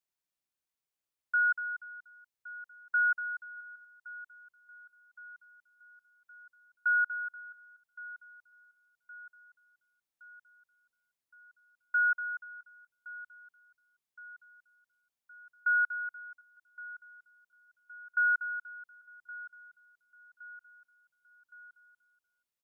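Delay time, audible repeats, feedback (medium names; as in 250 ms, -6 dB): 1117 ms, 4, 59%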